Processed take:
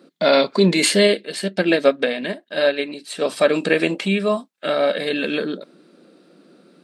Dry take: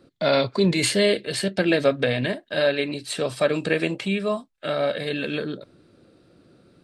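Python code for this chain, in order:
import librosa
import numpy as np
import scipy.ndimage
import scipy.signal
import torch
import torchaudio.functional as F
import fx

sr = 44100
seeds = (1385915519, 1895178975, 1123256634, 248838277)

y = fx.brickwall_highpass(x, sr, low_hz=160.0)
y = fx.upward_expand(y, sr, threshold_db=-29.0, expansion=1.5, at=(1.07, 3.22))
y = F.gain(torch.from_numpy(y), 5.0).numpy()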